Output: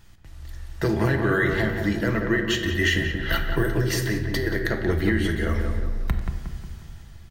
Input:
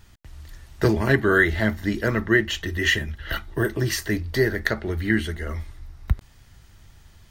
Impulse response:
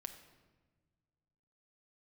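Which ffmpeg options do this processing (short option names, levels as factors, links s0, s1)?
-filter_complex "[0:a]dynaudnorm=f=200:g=7:m=3.76,alimiter=limit=0.266:level=0:latency=1:release=175,asettb=1/sr,asplit=3[s0][s1][s2];[s0]atrim=end=3.774[s3];[s1]atrim=start=3.77:end=4.47,asetpts=PTS-STARTPTS,afade=t=in:d=0.004:c=qsin,afade=t=out:st=0.696:d=0.004:c=qsin,acompressor=threshold=0.0794:ratio=6[s4];[s2]atrim=start=4.466[s5];[s3][s4]acrossfade=d=0.004:c1=hsin:c2=qsin[s6];[s6][s5]acrossfade=d=0.004:c1=qsin:c2=hsin,asplit=2[s7][s8];[s8]adelay=180,lowpass=f=1800:p=1,volume=0.562,asplit=2[s9][s10];[s10]adelay=180,lowpass=f=1800:p=1,volume=0.51,asplit=2[s11][s12];[s12]adelay=180,lowpass=f=1800:p=1,volume=0.51,asplit=2[s13][s14];[s14]adelay=180,lowpass=f=1800:p=1,volume=0.51,asplit=2[s15][s16];[s16]adelay=180,lowpass=f=1800:p=1,volume=0.51,asplit=2[s17][s18];[s18]adelay=180,lowpass=f=1800:p=1,volume=0.51[s19];[s7][s9][s11][s13][s15][s17][s19]amix=inputs=7:normalize=0[s20];[1:a]atrim=start_sample=2205[s21];[s20][s21]afir=irnorm=-1:irlink=0,volume=1.41"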